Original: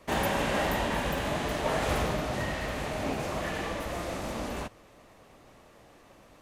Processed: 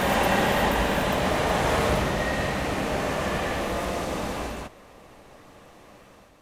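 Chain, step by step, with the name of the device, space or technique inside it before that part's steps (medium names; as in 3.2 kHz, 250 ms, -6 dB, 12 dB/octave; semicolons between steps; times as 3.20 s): reverse reverb (reverse; reverberation RT60 2.5 s, pre-delay 106 ms, DRR -5 dB; reverse)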